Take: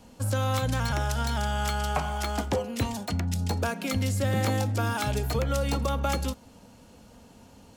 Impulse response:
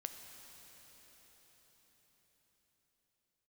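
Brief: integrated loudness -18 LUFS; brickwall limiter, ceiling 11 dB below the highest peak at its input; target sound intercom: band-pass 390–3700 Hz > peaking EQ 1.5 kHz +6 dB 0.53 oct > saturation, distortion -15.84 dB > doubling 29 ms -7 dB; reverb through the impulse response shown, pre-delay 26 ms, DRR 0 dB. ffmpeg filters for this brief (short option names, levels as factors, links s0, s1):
-filter_complex "[0:a]alimiter=level_in=1.33:limit=0.0631:level=0:latency=1,volume=0.75,asplit=2[s0][s1];[1:a]atrim=start_sample=2205,adelay=26[s2];[s1][s2]afir=irnorm=-1:irlink=0,volume=1.33[s3];[s0][s3]amix=inputs=2:normalize=0,highpass=390,lowpass=3700,equalizer=f=1500:t=o:w=0.53:g=6,asoftclip=threshold=0.0299,asplit=2[s4][s5];[s5]adelay=29,volume=0.447[s6];[s4][s6]amix=inputs=2:normalize=0,volume=8.41"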